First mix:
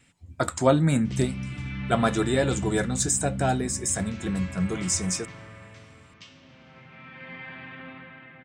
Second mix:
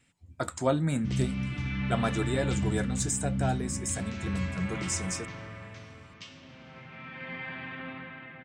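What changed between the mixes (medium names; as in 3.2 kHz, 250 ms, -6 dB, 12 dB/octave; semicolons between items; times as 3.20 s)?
speech -6.5 dB; background: send +6.5 dB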